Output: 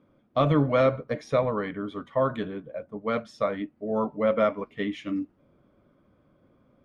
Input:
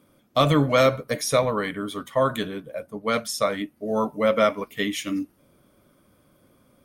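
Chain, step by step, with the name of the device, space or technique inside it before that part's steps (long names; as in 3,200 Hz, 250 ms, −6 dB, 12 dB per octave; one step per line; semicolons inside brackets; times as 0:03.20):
phone in a pocket (low-pass filter 3,600 Hz 12 dB per octave; high-shelf EQ 2,100 Hz −10.5 dB)
level −2 dB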